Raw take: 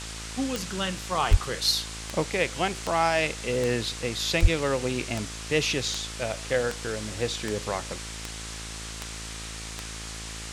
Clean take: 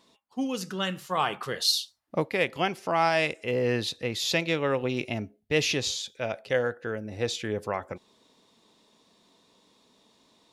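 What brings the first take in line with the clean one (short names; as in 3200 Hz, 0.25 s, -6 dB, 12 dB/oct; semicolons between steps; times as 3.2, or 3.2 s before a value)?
de-click; de-hum 54.9 Hz, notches 15; de-plosive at 1.3/4.41; noise print and reduce 26 dB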